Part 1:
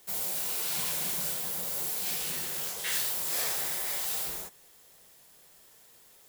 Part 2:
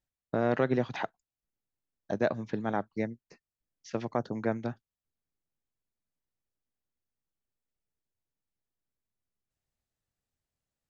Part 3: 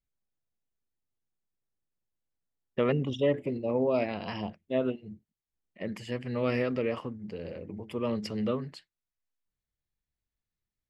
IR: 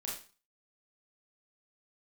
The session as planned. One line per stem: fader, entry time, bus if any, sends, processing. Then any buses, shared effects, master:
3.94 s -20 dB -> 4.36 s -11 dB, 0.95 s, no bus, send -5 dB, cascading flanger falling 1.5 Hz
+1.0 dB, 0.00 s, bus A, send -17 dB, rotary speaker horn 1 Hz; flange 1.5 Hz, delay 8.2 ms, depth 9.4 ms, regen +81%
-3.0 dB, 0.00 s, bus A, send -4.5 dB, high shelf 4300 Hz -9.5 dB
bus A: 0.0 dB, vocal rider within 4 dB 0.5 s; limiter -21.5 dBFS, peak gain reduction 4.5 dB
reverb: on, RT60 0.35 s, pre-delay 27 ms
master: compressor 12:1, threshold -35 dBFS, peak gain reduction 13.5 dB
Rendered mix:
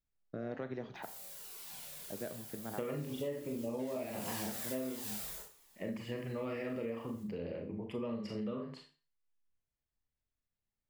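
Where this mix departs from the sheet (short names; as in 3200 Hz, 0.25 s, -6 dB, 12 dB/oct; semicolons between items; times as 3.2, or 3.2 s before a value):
stem 2 +1.0 dB -> -9.5 dB; stem 3 -3.0 dB -> -10.0 dB; reverb return +9.5 dB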